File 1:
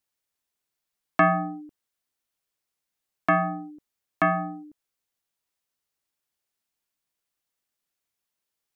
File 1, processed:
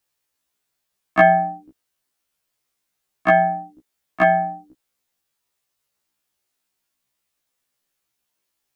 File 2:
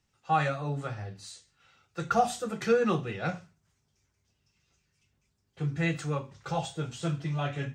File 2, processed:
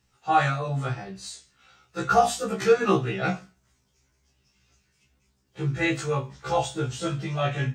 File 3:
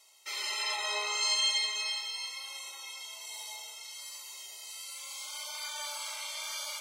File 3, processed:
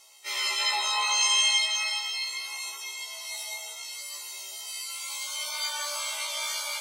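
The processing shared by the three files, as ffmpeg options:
-af "afftfilt=real='re*1.73*eq(mod(b,3),0)':imag='im*1.73*eq(mod(b,3),0)':win_size=2048:overlap=0.75,volume=9dB"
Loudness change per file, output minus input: +6.5, +5.0, +6.0 LU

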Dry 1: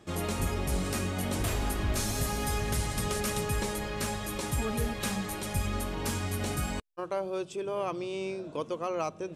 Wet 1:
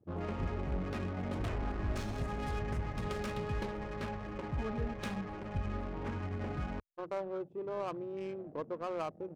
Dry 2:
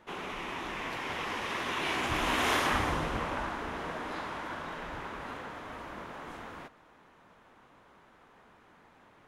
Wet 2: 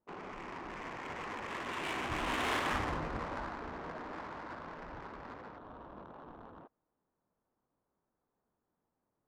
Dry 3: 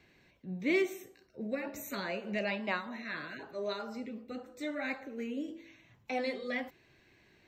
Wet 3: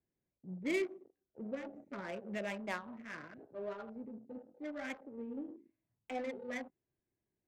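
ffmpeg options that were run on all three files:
-af "afwtdn=0.00794,adynamicsmooth=sensitivity=7:basefreq=950,volume=-5dB"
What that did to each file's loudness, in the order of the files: -6.5, -5.0, -6.0 LU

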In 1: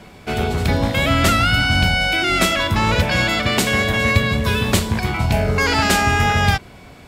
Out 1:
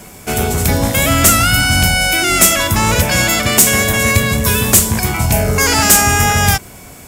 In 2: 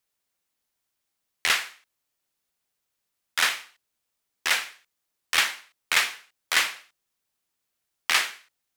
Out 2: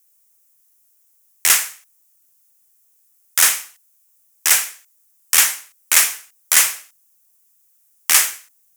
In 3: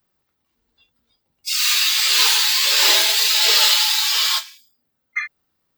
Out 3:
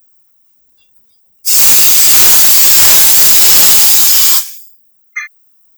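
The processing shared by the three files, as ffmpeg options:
-af "aexciter=amount=7:drive=3.6:freq=5.8k,acontrast=22,volume=-1dB"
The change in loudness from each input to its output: +5.5, +9.5, +11.5 LU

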